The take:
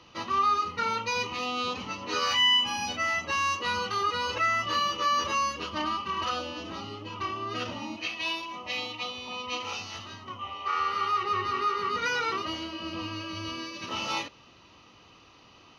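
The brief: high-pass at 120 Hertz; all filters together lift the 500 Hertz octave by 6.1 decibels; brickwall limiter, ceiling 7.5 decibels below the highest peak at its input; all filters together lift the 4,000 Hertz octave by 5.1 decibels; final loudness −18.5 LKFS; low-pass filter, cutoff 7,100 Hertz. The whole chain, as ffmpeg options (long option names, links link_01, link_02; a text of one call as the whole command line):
ffmpeg -i in.wav -af "highpass=120,lowpass=7100,equalizer=frequency=500:width_type=o:gain=7,equalizer=frequency=4000:width_type=o:gain=8,volume=9dB,alimiter=limit=-9.5dB:level=0:latency=1" out.wav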